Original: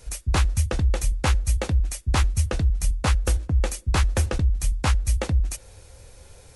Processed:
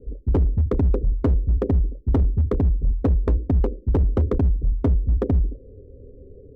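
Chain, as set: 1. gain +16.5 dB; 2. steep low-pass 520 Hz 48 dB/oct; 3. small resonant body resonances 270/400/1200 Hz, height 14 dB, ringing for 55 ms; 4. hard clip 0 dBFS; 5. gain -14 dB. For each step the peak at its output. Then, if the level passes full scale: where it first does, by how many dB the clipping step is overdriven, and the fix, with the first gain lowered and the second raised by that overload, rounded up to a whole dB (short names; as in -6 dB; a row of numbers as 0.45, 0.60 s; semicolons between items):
+5.5, +3.5, +10.0, 0.0, -14.0 dBFS; step 1, 10.0 dB; step 1 +6.5 dB, step 5 -4 dB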